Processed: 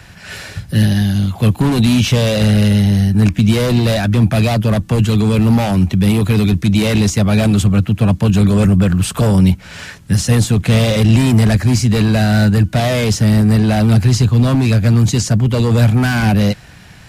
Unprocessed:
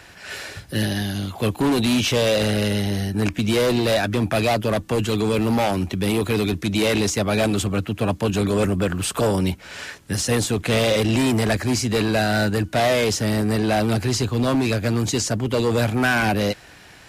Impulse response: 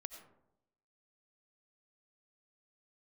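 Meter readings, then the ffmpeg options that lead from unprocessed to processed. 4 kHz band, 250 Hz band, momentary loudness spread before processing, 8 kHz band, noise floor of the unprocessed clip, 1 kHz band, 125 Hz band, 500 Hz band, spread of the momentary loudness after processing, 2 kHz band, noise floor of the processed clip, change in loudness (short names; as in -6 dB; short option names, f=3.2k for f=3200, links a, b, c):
+3.0 dB, +8.5 dB, 6 LU, +3.0 dB, -46 dBFS, +1.5 dB, +13.0 dB, +1.0 dB, 4 LU, +2.0 dB, -39 dBFS, +8.0 dB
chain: -filter_complex "[0:a]lowshelf=f=240:t=q:w=1.5:g=8.5,acrossover=split=540|3400[a][b][c];[b]asoftclip=type=hard:threshold=-21.5dB[d];[a][d][c]amix=inputs=3:normalize=0,volume=3dB"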